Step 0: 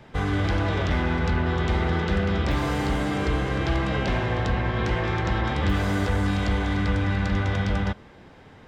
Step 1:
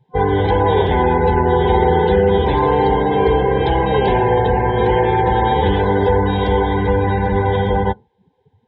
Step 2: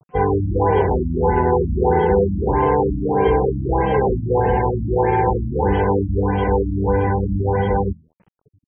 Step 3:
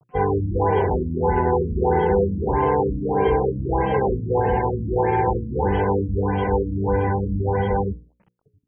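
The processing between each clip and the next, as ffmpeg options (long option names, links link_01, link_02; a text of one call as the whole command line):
ffmpeg -i in.wav -af "highpass=48,afftdn=noise_reduction=30:noise_floor=-33,superequalizer=7b=3.98:9b=3.98:10b=0.251:13b=2.24,volume=5.5dB" out.wav
ffmpeg -i in.wav -af "bandreject=frequency=80.28:width_type=h:width=4,bandreject=frequency=160.56:width_type=h:width=4,bandreject=frequency=240.84:width_type=h:width=4,acrusher=bits=8:mix=0:aa=0.000001,afftfilt=real='re*lt(b*sr/1024,300*pow(3300/300,0.5+0.5*sin(2*PI*1.6*pts/sr)))':imag='im*lt(b*sr/1024,300*pow(3300/300,0.5+0.5*sin(2*PI*1.6*pts/sr)))':win_size=1024:overlap=0.75,volume=-1.5dB" out.wav
ffmpeg -i in.wav -af "bandreject=frequency=60:width_type=h:width=6,bandreject=frequency=120:width_type=h:width=6,bandreject=frequency=180:width_type=h:width=6,bandreject=frequency=240:width_type=h:width=6,bandreject=frequency=300:width_type=h:width=6,bandreject=frequency=360:width_type=h:width=6,bandreject=frequency=420:width_type=h:width=6,bandreject=frequency=480:width_type=h:width=6,bandreject=frequency=540:width_type=h:width=6,volume=-2.5dB" out.wav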